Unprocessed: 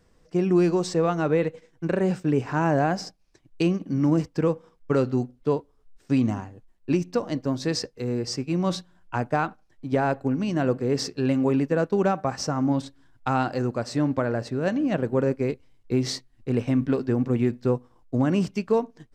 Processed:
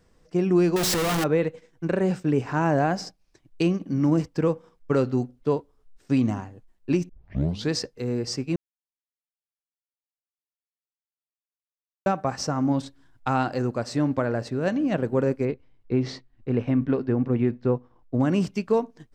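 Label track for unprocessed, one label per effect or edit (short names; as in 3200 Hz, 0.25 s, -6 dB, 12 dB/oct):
0.760000	1.240000	infinite clipping
7.090000	7.090000	tape start 0.62 s
8.560000	12.060000	mute
15.450000	18.200000	Bessel low-pass 2600 Hz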